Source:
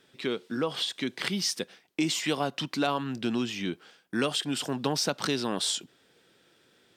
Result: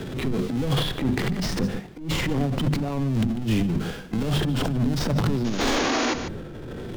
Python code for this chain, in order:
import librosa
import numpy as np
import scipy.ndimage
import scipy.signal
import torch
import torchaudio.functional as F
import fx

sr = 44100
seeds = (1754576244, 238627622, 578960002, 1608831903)

p1 = fx.halfwave_hold(x, sr)
p2 = fx.spec_paint(p1, sr, seeds[0], shape='noise', start_s=5.44, length_s=0.7, low_hz=230.0, high_hz=7000.0, level_db=-23.0)
p3 = fx.tilt_eq(p2, sr, slope=-3.5)
p4 = fx.hpss(p3, sr, part='percussive', gain_db=-11)
p5 = fx.over_compress(p4, sr, threshold_db=-27.0, ratio=-0.5)
p6 = fx.hum_notches(p5, sr, base_hz=50, count=5)
p7 = p6 + 10.0 ** (-20.5 / 20.0) * np.pad(p6, (int(146 * sr / 1000.0), 0))[:len(p6)]
p8 = 10.0 ** (-23.5 / 20.0) * np.tanh(p7 / 10.0 ** (-23.5 / 20.0))
p9 = p7 + (p8 * 10.0 ** (-10.5 / 20.0))
p10 = fx.low_shelf(p9, sr, hz=200.0, db=7.5)
p11 = fx.transient(p10, sr, attack_db=-9, sustain_db=9)
y = fx.band_squash(p11, sr, depth_pct=70)